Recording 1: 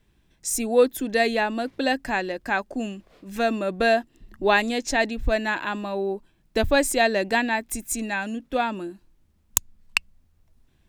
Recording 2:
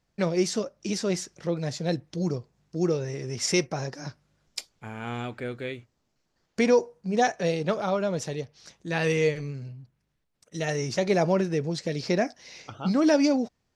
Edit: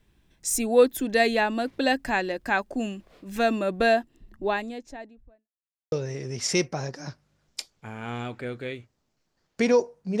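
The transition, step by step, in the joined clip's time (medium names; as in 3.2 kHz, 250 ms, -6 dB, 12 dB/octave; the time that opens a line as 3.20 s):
recording 1
3.57–5.49 s: studio fade out
5.49–5.92 s: mute
5.92 s: go over to recording 2 from 2.91 s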